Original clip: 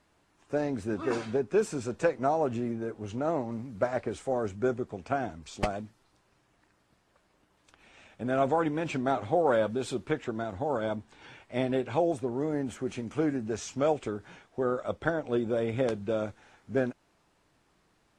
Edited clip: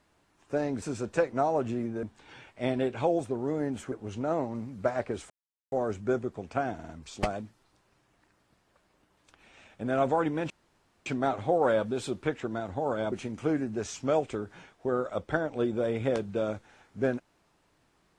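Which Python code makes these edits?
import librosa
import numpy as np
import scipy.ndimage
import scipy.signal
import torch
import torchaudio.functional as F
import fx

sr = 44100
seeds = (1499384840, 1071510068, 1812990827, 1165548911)

y = fx.edit(x, sr, fx.cut(start_s=0.82, length_s=0.86),
    fx.insert_silence(at_s=4.27, length_s=0.42),
    fx.stutter(start_s=5.29, slice_s=0.05, count=4),
    fx.insert_room_tone(at_s=8.9, length_s=0.56),
    fx.move(start_s=10.96, length_s=1.89, to_s=2.89), tone=tone)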